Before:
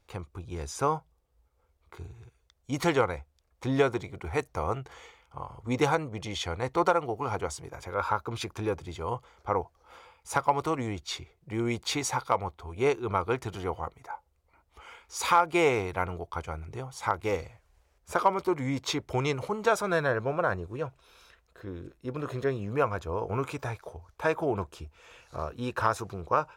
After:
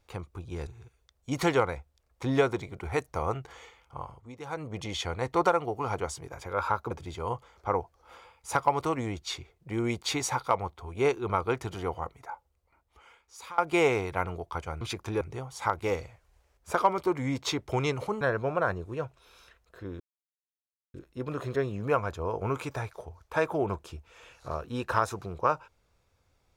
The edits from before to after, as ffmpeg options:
-filter_complex "[0:a]asplit=10[s0][s1][s2][s3][s4][s5][s6][s7][s8][s9];[s0]atrim=end=0.672[s10];[s1]atrim=start=2.078:end=5.78,asetpts=PTS-STARTPTS,afade=t=out:st=3.412:d=0.29:c=qua:silence=0.11885[s11];[s2]atrim=start=5.78:end=5.8,asetpts=PTS-STARTPTS,volume=0.119[s12];[s3]atrim=start=5.8:end=8.322,asetpts=PTS-STARTPTS,afade=t=in:d=0.29:c=qua:silence=0.11885[s13];[s4]atrim=start=8.718:end=15.39,asetpts=PTS-STARTPTS,afade=t=out:st=5.252:d=1.42:silence=0.0749894[s14];[s5]atrim=start=15.39:end=16.622,asetpts=PTS-STARTPTS,afade=t=in:d=0.004:c=hsin:silence=0.0749894[s15];[s6]atrim=start=8.318:end=8.722[s16];[s7]atrim=start=16.618:end=19.622[s17];[s8]atrim=start=20.028:end=21.82,asetpts=PTS-STARTPTS,afade=t=out:st=1.788:d=0.004:c=hsin,apad=pad_dur=0.94[s18];[s9]atrim=start=21.82,asetpts=PTS-STARTPTS,afade=t=in:d=0.004:c=hsin[s19];[s11][s12][s13]concat=n=3:v=0:a=1[s20];[s10][s20]acrossfade=d=0.004:c1=hsin:c2=hsin[s21];[s14][s15]concat=n=2:v=0:a=1[s22];[s21][s22]acrossfade=d=0.004:c1=hsin:c2=hsin[s23];[s23][s16]acrossfade=d=0.004:c1=hsin:c2=hsin[s24];[s24][s17]acrossfade=d=0.004:c1=hsin:c2=hsin[s25];[s18][s19]concat=n=2:v=0:a=1[s26];[s25][s26]acrossfade=d=0.004:c1=hsin:c2=hsin"

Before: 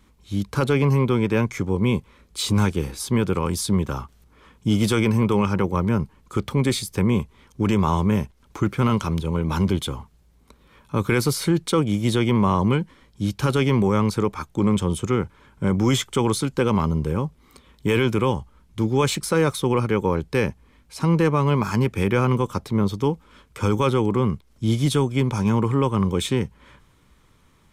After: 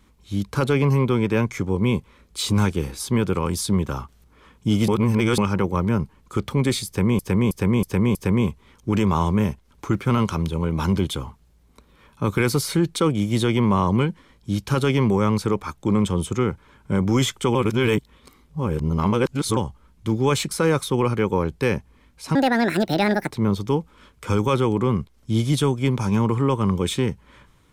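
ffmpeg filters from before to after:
-filter_complex "[0:a]asplit=11[s0][s1][s2][s3][s4][s5][s6][s7][s8][s9][s10];[s0]atrim=end=4.882[s11];[s1]atrim=start=4.878:end=5.382,asetpts=PTS-STARTPTS,areverse[s12];[s2]atrim=start=5.378:end=7.192[s13];[s3]atrim=start=6.868:end=7.192[s14];[s4]atrim=start=6.868:end=7.192[s15];[s5]atrim=start=6.868:end=7.192[s16];[s6]atrim=start=6.868:end=16.272[s17];[s7]atrim=start=16.268:end=18.292,asetpts=PTS-STARTPTS,areverse[s18];[s8]atrim=start=18.288:end=21.074[s19];[s9]atrim=start=21.07:end=22.64,asetpts=PTS-STARTPTS,asetrate=72324,aresample=44100[s20];[s10]atrim=start=22.636[s21];[s11][s12]acrossfade=d=0.004:c1=hsin:c2=hsin[s22];[s22][s13]acrossfade=d=0.004:c1=hsin:c2=hsin[s23];[s23][s14]acrossfade=d=0.004:c1=hsin:c2=hsin[s24];[s24][s15]acrossfade=d=0.004:c1=hsin:c2=hsin[s25];[s25][s16]acrossfade=d=0.004:c1=hsin:c2=hsin[s26];[s26][s17]acrossfade=d=0.004:c1=hsin:c2=hsin[s27];[s27][s18]acrossfade=d=0.004:c1=hsin:c2=hsin[s28];[s28][s19]acrossfade=d=0.004:c1=hsin:c2=hsin[s29];[s29][s20]acrossfade=d=0.004:c1=hsin:c2=hsin[s30];[s30][s21]acrossfade=d=0.004:c1=hsin:c2=hsin"

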